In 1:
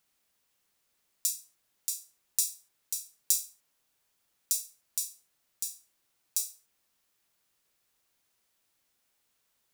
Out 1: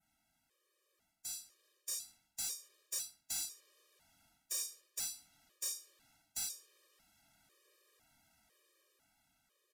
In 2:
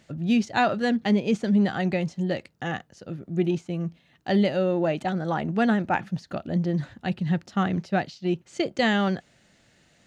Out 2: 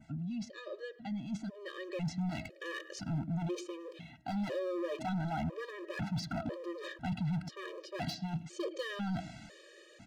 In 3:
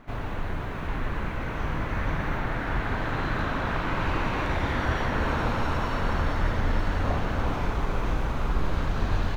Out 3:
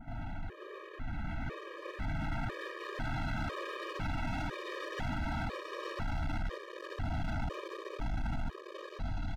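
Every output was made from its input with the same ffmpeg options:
-filter_complex "[0:a]adynamicequalizer=threshold=0.00398:dfrequency=4200:dqfactor=0.87:tfrequency=4200:tqfactor=0.87:attack=5:release=100:ratio=0.375:range=3:mode=boostabove:tftype=bell,aresample=32000,aresample=44100,areverse,acompressor=threshold=-34dB:ratio=16,areverse,asoftclip=type=tanh:threshold=-29.5dB,highshelf=f=2.3k:g=-8.5,bandreject=f=1k:w=8.1,bandreject=f=320.5:t=h:w=4,bandreject=f=641:t=h:w=4,bandreject=f=961.5:t=h:w=4,bandreject=f=1.282k:t=h:w=4,bandreject=f=1.6025k:t=h:w=4,bandreject=f=1.923k:t=h:w=4,asplit=2[a][b];[b]adelay=108,lowpass=f=2.5k:p=1,volume=-22dB,asplit=2[c][d];[d]adelay=108,lowpass=f=2.5k:p=1,volume=0.27[e];[c][e]amix=inputs=2:normalize=0[f];[a][f]amix=inputs=2:normalize=0,alimiter=level_in=15dB:limit=-24dB:level=0:latency=1:release=14,volume=-15dB,dynaudnorm=f=720:g=5:m=8.5dB,asoftclip=type=hard:threshold=-37dB,afftfilt=real='re*gt(sin(2*PI*1*pts/sr)*(1-2*mod(floor(b*sr/1024/320),2)),0)':imag='im*gt(sin(2*PI*1*pts/sr)*(1-2*mod(floor(b*sr/1024/320),2)),0)':win_size=1024:overlap=0.75,volume=6dB"

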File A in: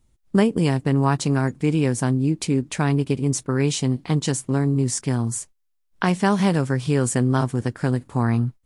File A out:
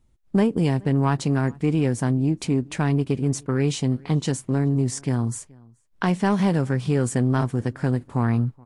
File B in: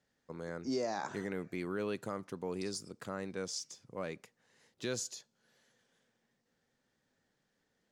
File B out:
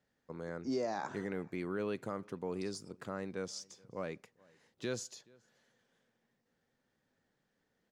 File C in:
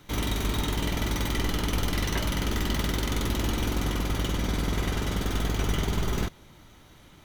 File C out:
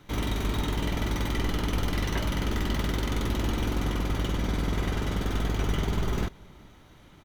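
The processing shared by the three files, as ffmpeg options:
-filter_complex "[0:a]highshelf=f=3.7k:g=-7,asoftclip=type=tanh:threshold=-10.5dB,asplit=2[a][b];[b]adelay=425.7,volume=-26dB,highshelf=f=4k:g=-9.58[c];[a][c]amix=inputs=2:normalize=0"

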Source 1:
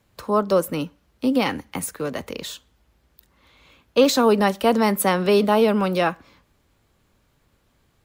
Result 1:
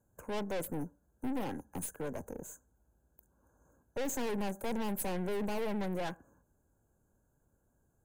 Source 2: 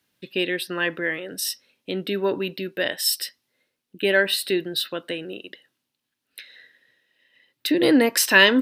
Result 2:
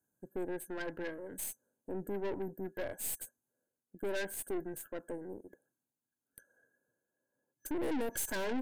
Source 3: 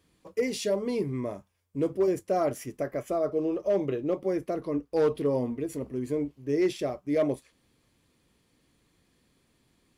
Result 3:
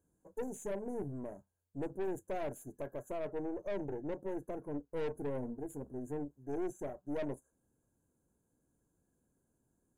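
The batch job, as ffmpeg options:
-af "afftfilt=real='re*(1-between(b*sr/4096,1700,6100))':imag='im*(1-between(b*sr/4096,1700,6100))':win_size=4096:overlap=0.75,aeval=exprs='(tanh(22.4*val(0)+0.65)-tanh(0.65))/22.4':c=same,equalizer=f=1.2k:w=4.2:g=-13,volume=-6dB"

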